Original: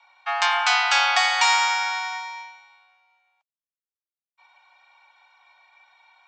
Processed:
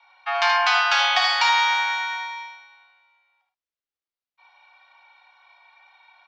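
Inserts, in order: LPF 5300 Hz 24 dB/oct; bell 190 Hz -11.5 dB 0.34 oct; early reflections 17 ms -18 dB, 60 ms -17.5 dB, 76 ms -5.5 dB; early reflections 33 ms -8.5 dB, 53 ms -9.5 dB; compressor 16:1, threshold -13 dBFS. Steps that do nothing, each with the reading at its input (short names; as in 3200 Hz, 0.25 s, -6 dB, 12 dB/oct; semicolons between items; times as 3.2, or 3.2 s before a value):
bell 190 Hz: input band starts at 540 Hz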